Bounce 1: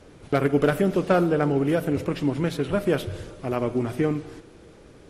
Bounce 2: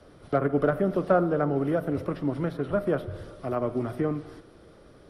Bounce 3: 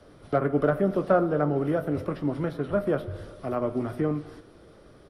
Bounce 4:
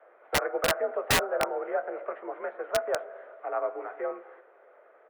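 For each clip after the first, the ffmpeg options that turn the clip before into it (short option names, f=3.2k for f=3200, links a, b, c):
-filter_complex "[0:a]superequalizer=8b=1.58:10b=1.58:12b=0.631:15b=0.355,acrossover=split=140|490|1900[a][b][c][d];[d]acompressor=threshold=-50dB:ratio=10[e];[a][b][c][e]amix=inputs=4:normalize=0,volume=-4dB"
-filter_complex "[0:a]asplit=2[a][b];[b]adelay=20,volume=-11.5dB[c];[a][c]amix=inputs=2:normalize=0"
-af "highpass=f=450:t=q:w=0.5412,highpass=f=450:t=q:w=1.307,lowpass=f=2.2k:t=q:w=0.5176,lowpass=f=2.2k:t=q:w=0.7071,lowpass=f=2.2k:t=q:w=1.932,afreqshift=54,aeval=exprs='(mod(7.08*val(0)+1,2)-1)/7.08':c=same"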